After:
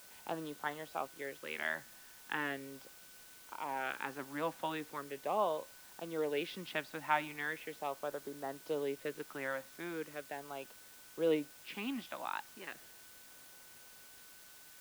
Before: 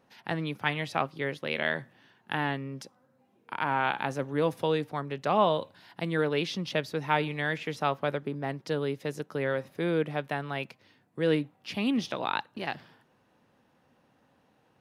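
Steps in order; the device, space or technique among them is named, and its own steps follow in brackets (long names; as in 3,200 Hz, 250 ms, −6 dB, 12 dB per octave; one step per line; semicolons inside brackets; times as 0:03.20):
shortwave radio (band-pass filter 350–2,600 Hz; amplitude tremolo 0.44 Hz, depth 49%; auto-filter notch sine 0.39 Hz 420–2,500 Hz; steady tone 1,500 Hz −62 dBFS; white noise bed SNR 16 dB)
level −3 dB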